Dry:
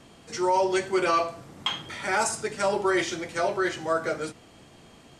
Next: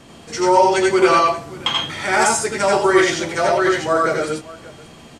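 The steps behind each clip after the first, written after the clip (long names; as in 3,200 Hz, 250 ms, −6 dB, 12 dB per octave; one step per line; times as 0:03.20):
multi-tap delay 83/96/580 ms −3.5/−3.5/−19 dB
level +7 dB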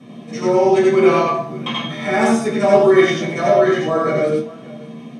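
low-shelf EQ 140 Hz −10 dB
convolution reverb RT60 0.45 s, pre-delay 3 ms, DRR −5 dB
level −14 dB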